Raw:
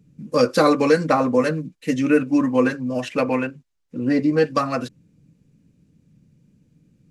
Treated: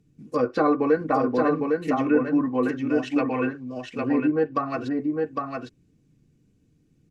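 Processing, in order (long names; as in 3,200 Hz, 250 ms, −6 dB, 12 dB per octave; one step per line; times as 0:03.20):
comb filter 2.7 ms, depth 48%
treble cut that deepens with the level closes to 1,400 Hz, closed at −14.5 dBFS
single-tap delay 806 ms −3.5 dB
level −5 dB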